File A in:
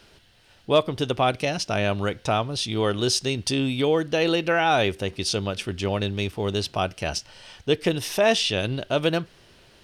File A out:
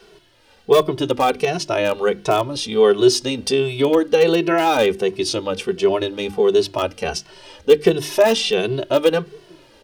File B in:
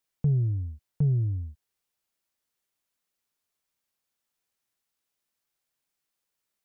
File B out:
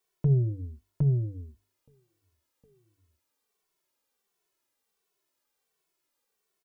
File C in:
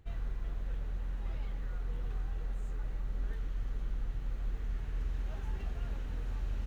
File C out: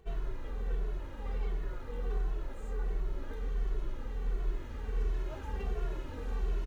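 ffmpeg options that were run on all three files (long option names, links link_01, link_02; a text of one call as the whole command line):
ffmpeg -i in.wav -filter_complex "[0:a]bandreject=frequency=50:width_type=h:width=6,bandreject=frequency=100:width_type=h:width=6,bandreject=frequency=150:width_type=h:width=6,bandreject=frequency=200:width_type=h:width=6,bandreject=frequency=250:width_type=h:width=6,bandreject=frequency=300:width_type=h:width=6,bandreject=frequency=350:width_type=h:width=6,asplit=2[link_01][link_02];[link_02]aeval=exprs='(mod(3.98*val(0)+1,2)-1)/3.98':channel_layout=same,volume=-11dB[link_03];[link_01][link_03]amix=inputs=2:normalize=0,equalizer=frequency=100:width_type=o:width=0.67:gain=-7,equalizer=frequency=400:width_type=o:width=0.67:gain=10,equalizer=frequency=1000:width_type=o:width=0.67:gain=4,asplit=2[link_04][link_05];[link_05]adelay=1633,volume=-30dB,highshelf=frequency=4000:gain=-36.7[link_06];[link_04][link_06]amix=inputs=2:normalize=0,asplit=2[link_07][link_08];[link_08]adelay=2.2,afreqshift=-1.4[link_09];[link_07][link_09]amix=inputs=2:normalize=1,volume=3dB" out.wav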